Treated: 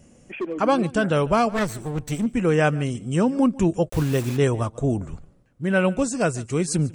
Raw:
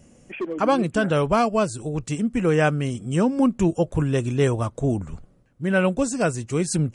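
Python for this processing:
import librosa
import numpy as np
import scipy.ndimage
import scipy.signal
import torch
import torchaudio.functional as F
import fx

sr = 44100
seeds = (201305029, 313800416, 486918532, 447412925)

p1 = fx.lower_of_two(x, sr, delay_ms=0.49, at=(1.49, 2.26))
p2 = p1 + fx.echo_single(p1, sr, ms=145, db=-21.5, dry=0)
y = fx.quant_dither(p2, sr, seeds[0], bits=6, dither='none', at=(3.88, 4.36), fade=0.02)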